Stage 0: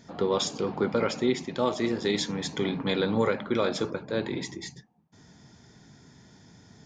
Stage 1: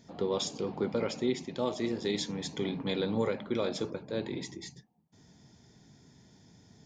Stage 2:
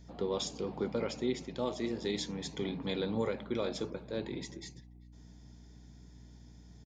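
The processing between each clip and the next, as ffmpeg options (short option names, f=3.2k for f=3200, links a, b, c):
-af "equalizer=f=1.4k:t=o:w=0.98:g=-6.5,volume=-4.5dB"
-filter_complex "[0:a]aeval=exprs='val(0)+0.00316*(sin(2*PI*60*n/s)+sin(2*PI*2*60*n/s)/2+sin(2*PI*3*60*n/s)/3+sin(2*PI*4*60*n/s)/4+sin(2*PI*5*60*n/s)/5)':c=same,asplit=2[a][b];[b]adelay=390,highpass=300,lowpass=3.4k,asoftclip=type=hard:threshold=-26.5dB,volume=-24dB[c];[a][c]amix=inputs=2:normalize=0,volume=-3dB"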